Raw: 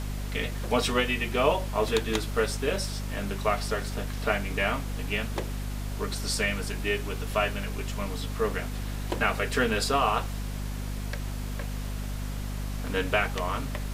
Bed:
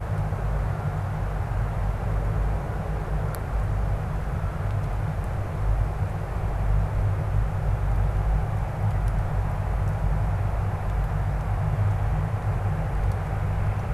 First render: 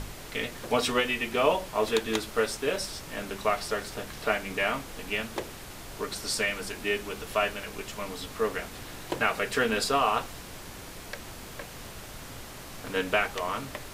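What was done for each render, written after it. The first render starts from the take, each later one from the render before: hum notches 50/100/150/200/250 Hz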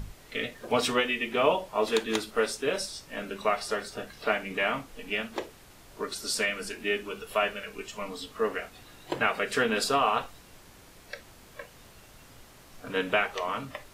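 noise print and reduce 10 dB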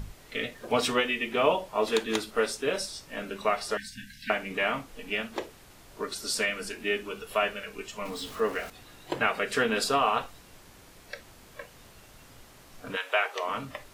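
3.77–4.30 s: brick-wall FIR band-stop 280–1500 Hz; 8.05–8.70 s: jump at every zero crossing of -41 dBFS; 12.95–13.49 s: high-pass 840 Hz -> 230 Hz 24 dB/octave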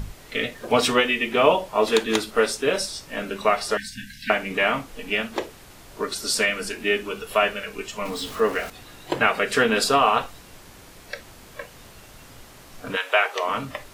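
trim +6.5 dB

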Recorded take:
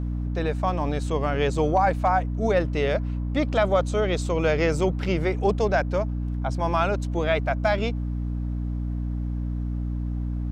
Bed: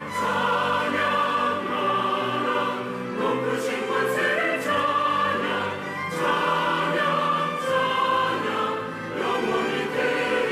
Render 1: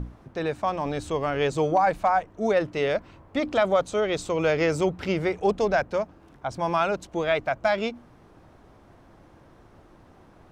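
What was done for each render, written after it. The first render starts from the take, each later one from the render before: hum notches 60/120/180/240/300 Hz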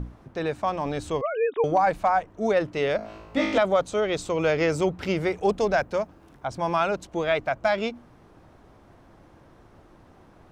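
1.21–1.64 s: formants replaced by sine waves; 2.97–3.58 s: flutter echo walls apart 3.2 m, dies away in 0.86 s; 5.02–6.46 s: treble shelf 8.3 kHz +6.5 dB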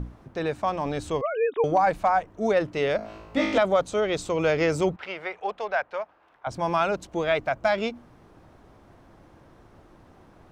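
4.96–6.47 s: three-band isolator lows -23 dB, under 580 Hz, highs -21 dB, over 3.6 kHz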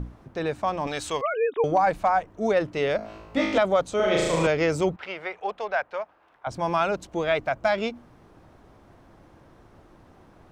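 0.87–1.34 s: tilt shelf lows -8 dB, about 660 Hz; 3.96–4.47 s: flutter echo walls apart 6.2 m, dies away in 1.4 s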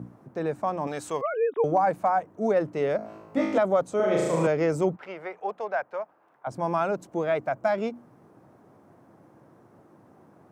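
high-pass 120 Hz 24 dB/octave; peaking EQ 3.5 kHz -13 dB 1.8 oct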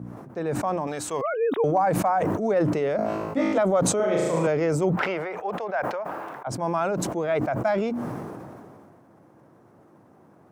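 decay stretcher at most 25 dB/s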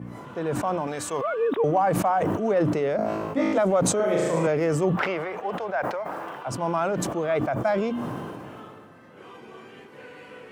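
add bed -21 dB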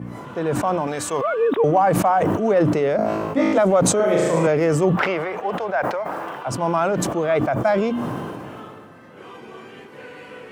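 trim +5 dB

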